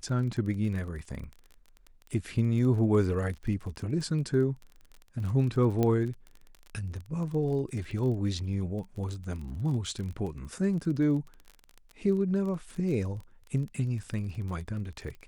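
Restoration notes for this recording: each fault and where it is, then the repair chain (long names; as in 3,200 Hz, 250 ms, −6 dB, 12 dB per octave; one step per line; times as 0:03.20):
surface crackle 25 per second −36 dBFS
0:05.83: click −15 dBFS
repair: click removal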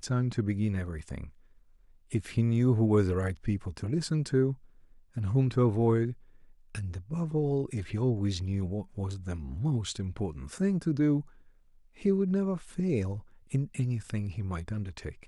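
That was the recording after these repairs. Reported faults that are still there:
none of them is left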